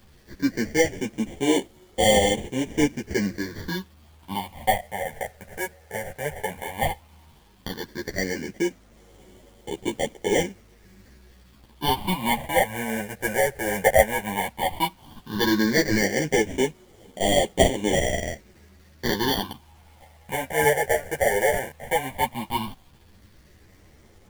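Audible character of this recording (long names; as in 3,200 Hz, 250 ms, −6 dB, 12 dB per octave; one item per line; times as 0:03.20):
aliases and images of a low sample rate 1,300 Hz, jitter 0%
phaser sweep stages 6, 0.13 Hz, lowest notch 280–1,400 Hz
a quantiser's noise floor 10 bits, dither none
a shimmering, thickened sound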